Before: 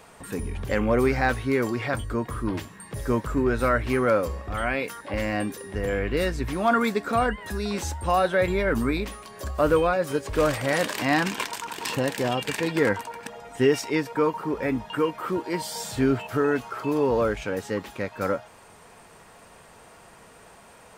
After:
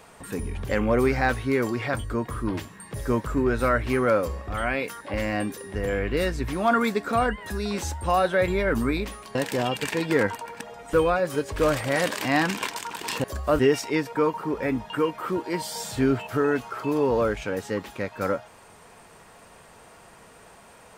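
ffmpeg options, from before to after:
-filter_complex "[0:a]asplit=5[s0][s1][s2][s3][s4];[s0]atrim=end=9.352[s5];[s1]atrim=start=12.008:end=13.592[s6];[s2]atrim=start=9.698:end=12.012[s7];[s3]atrim=start=9.348:end=9.702[s8];[s4]atrim=start=13.588[s9];[s5][s6]acrossfade=d=0.004:c1=hsin:c2=hsin[s10];[s10][s7]acrossfade=d=0.004:c1=hsin:c2=hsin[s11];[s11][s8]acrossfade=d=0.004:c1=hsin:c2=hsin[s12];[s12][s9]acrossfade=d=0.004:c1=hsin:c2=hsin"

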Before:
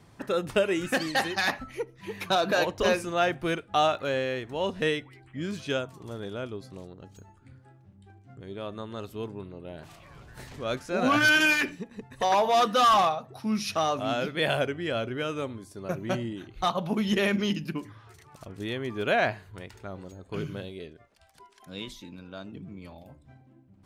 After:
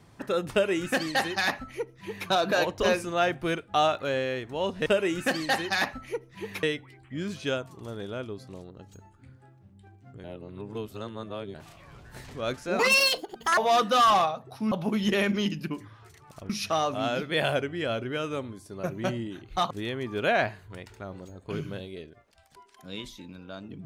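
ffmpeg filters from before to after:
-filter_complex "[0:a]asplit=10[s0][s1][s2][s3][s4][s5][s6][s7][s8][s9];[s0]atrim=end=4.862[s10];[s1]atrim=start=0.518:end=2.292[s11];[s2]atrim=start=4.858:end=8.472[s12];[s3]atrim=start=8.468:end=9.772,asetpts=PTS-STARTPTS,areverse[s13];[s4]atrim=start=9.768:end=11.024[s14];[s5]atrim=start=11.02:end=12.41,asetpts=PTS-STARTPTS,asetrate=78057,aresample=44100,atrim=end_sample=34632,asetpts=PTS-STARTPTS[s15];[s6]atrim=start=12.406:end=13.552[s16];[s7]atrim=start=16.758:end=18.542[s17];[s8]atrim=start=13.548:end=16.762[s18];[s9]atrim=start=18.538[s19];[s10][s11]acrossfade=d=0.004:c1=hsin:c2=hsin[s20];[s20][s12]acrossfade=d=0.004:c1=hsin:c2=hsin[s21];[s21][s13]acrossfade=d=0.004:c1=hsin:c2=hsin[s22];[s22][s14]acrossfade=d=0.004:c1=hsin:c2=hsin[s23];[s23][s15]acrossfade=d=0.004:c1=hsin:c2=hsin[s24];[s24][s16]acrossfade=d=0.004:c1=hsin:c2=hsin[s25];[s25][s17]acrossfade=d=0.004:c1=hsin:c2=hsin[s26];[s26][s18]acrossfade=d=0.004:c1=hsin:c2=hsin[s27];[s27][s19]acrossfade=d=0.004:c1=hsin:c2=hsin"

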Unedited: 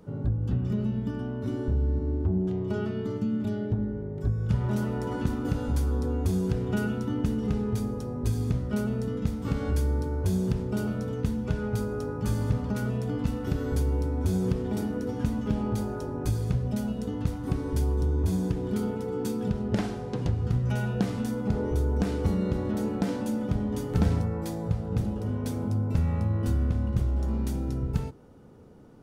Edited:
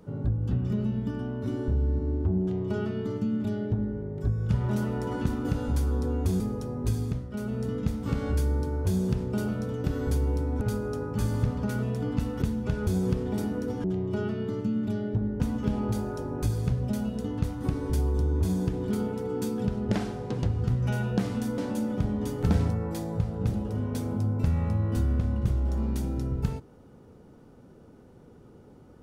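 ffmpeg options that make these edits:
-filter_complex "[0:a]asplit=11[s0][s1][s2][s3][s4][s5][s6][s7][s8][s9][s10];[s0]atrim=end=6.402[s11];[s1]atrim=start=7.788:end=8.68,asetpts=PTS-STARTPTS,afade=t=out:st=0.532:d=0.36:silence=0.398107[s12];[s2]atrim=start=8.68:end=8.7,asetpts=PTS-STARTPTS,volume=0.398[s13];[s3]atrim=start=8.7:end=11.232,asetpts=PTS-STARTPTS,afade=t=in:d=0.36:silence=0.398107[s14];[s4]atrim=start=13.488:end=14.262[s15];[s5]atrim=start=11.678:end=13.492[s16];[s6]atrim=start=11.228:end=11.682[s17];[s7]atrim=start=14.258:end=15.232[s18];[s8]atrim=start=2.408:end=3.972[s19];[s9]atrim=start=15.228:end=21.412[s20];[s10]atrim=start=23.088[s21];[s12][s13][s14]concat=n=3:v=0:a=1[s22];[s11][s22]acrossfade=d=0.004:c1=hsin:c2=hsin[s23];[s23][s15]acrossfade=d=0.004:c1=hsin:c2=hsin[s24];[s24][s16]acrossfade=d=0.004:c1=hsin:c2=hsin[s25];[s25][s17]acrossfade=d=0.004:c1=hsin:c2=hsin[s26];[s26][s18]acrossfade=d=0.004:c1=hsin:c2=hsin[s27];[s27][s19]acrossfade=d=0.004:c1=hsin:c2=hsin[s28];[s28][s20]acrossfade=d=0.004:c1=hsin:c2=hsin[s29];[s29][s21]acrossfade=d=0.004:c1=hsin:c2=hsin"

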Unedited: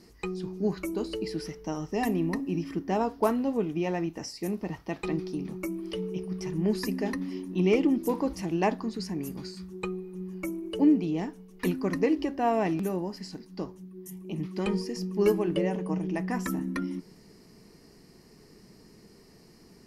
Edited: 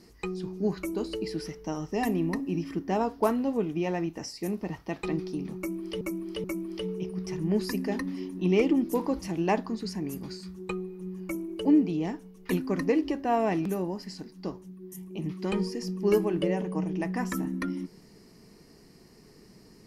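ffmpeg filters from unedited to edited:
-filter_complex "[0:a]asplit=3[s0][s1][s2];[s0]atrim=end=6.012[s3];[s1]atrim=start=5.578:end=6.012[s4];[s2]atrim=start=5.578[s5];[s3][s4]acrossfade=d=0.004:c1=hsin:c2=hsin[s6];[s6][s5]acrossfade=d=0.004:c1=hsin:c2=hsin"

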